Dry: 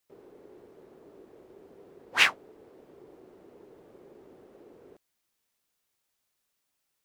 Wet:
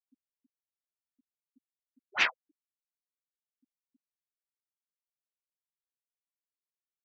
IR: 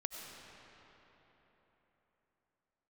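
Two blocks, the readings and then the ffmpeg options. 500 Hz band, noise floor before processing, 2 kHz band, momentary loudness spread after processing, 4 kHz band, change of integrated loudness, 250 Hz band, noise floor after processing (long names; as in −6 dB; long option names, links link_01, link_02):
−8.5 dB, −80 dBFS, −5.0 dB, 6 LU, −7.0 dB, −5.5 dB, −10.0 dB, below −85 dBFS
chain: -af "afftfilt=real='re*gte(hypot(re,im),0.0355)':imag='im*gte(hypot(re,im),0.0355)':win_size=1024:overlap=0.75,afreqshift=-130,volume=-5dB"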